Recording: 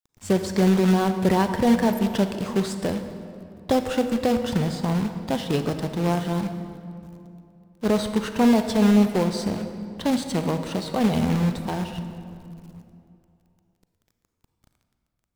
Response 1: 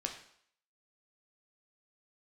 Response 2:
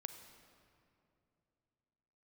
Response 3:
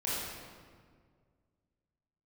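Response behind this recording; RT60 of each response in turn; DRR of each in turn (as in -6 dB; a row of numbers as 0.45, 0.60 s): 2; 0.65, 2.8, 1.9 s; 2.0, 8.0, -9.0 dB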